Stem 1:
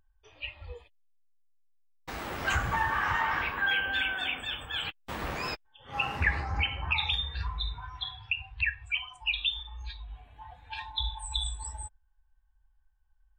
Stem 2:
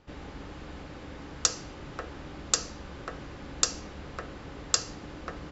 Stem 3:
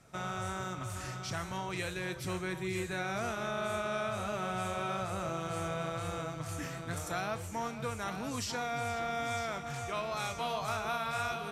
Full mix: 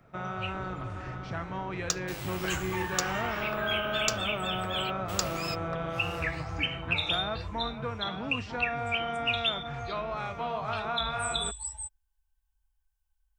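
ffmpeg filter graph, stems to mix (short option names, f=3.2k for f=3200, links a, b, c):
-filter_complex "[0:a]aexciter=amount=3.1:drive=4.4:freq=2.3k,volume=-8dB[a];[1:a]adynamicsmooth=sensitivity=6.5:basefreq=2.1k,adelay=450,volume=-4dB[b];[2:a]lowpass=2.1k,volume=2.5dB[c];[a][b][c]amix=inputs=3:normalize=0"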